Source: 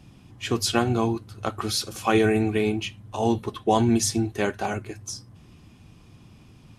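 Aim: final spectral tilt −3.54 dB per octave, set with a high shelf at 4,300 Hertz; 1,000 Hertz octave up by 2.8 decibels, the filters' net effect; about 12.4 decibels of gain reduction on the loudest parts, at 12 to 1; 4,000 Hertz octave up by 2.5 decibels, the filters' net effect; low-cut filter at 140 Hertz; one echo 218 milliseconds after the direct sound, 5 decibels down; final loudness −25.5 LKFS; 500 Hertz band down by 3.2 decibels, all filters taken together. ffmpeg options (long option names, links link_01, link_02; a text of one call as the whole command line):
ffmpeg -i in.wav -af "highpass=140,equalizer=frequency=500:width_type=o:gain=-5.5,equalizer=frequency=1000:width_type=o:gain=6,equalizer=frequency=4000:width_type=o:gain=6.5,highshelf=frequency=4300:gain=-6,acompressor=threshold=-28dB:ratio=12,aecho=1:1:218:0.562,volume=7dB" out.wav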